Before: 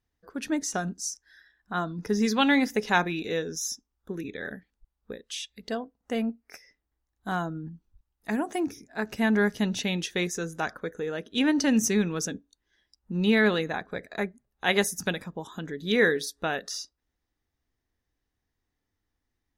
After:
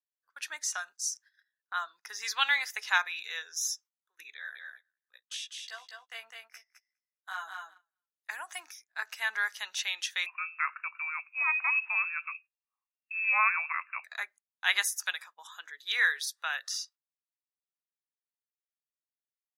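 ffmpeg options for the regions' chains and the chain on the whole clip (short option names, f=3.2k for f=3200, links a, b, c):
-filter_complex "[0:a]asettb=1/sr,asplit=3[a][b][c];[a]atrim=end=4.344[d];[b]atrim=start=4.34:end=8.3,asetpts=PTS-STARTPTS,afade=t=in:d=0.004:c=qsin,afade=t=out:st=3.956:d=0.004:c=qsin,flanger=delay=15.5:depth=2.4:speed=1.3,lowshelf=f=200:g=-6.5,aecho=1:1:205|410|615:0.631|0.107|0.0182,atrim=end_sample=174636[e];[c]atrim=start=8.296[f];[d][e]acrossfade=d=0.004:c1=hsin:c2=qsin[g];[g][f]acrossfade=d=0.004:c1=qsin:c2=hsin,asettb=1/sr,asplit=3[h][i][j];[h]atrim=end=10.264[k];[i]atrim=start=10.26:end=14.04,asetpts=PTS-STARTPTS,afade=t=in:d=0.004:c=qsin,afade=t=out:st=3.776:d=0.004:c=qsin,tiltshelf=f=1.1k:g=-7,lowpass=f=2.4k:t=q:w=0.5098,lowpass=f=2.4k:t=q:w=0.6013,lowpass=f=2.4k:t=q:w=0.9,lowpass=f=2.4k:t=q:w=2.563,afreqshift=-2800[l];[j]atrim=start=14.036[m];[k][l]acrossfade=d=0.004:c1=hsin:c2=qsin[n];[n][m]acrossfade=d=0.004:c1=qsin:c2=hsin,highpass=f=1.1k:w=0.5412,highpass=f=1.1k:w=1.3066,agate=range=-22dB:threshold=-52dB:ratio=16:detection=peak"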